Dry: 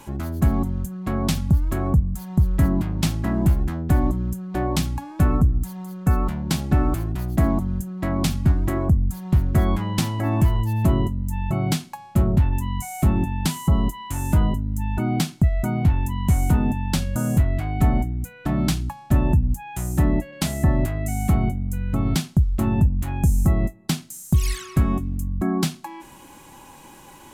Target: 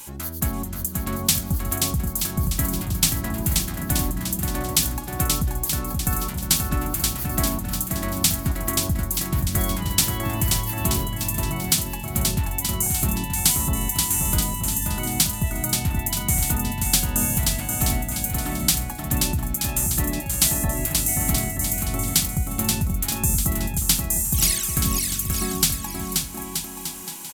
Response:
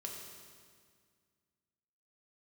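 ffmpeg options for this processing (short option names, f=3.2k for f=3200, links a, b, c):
-af "aecho=1:1:530|927.5|1226|1449|1617:0.631|0.398|0.251|0.158|0.1,crystalizer=i=9:c=0,volume=-7.5dB"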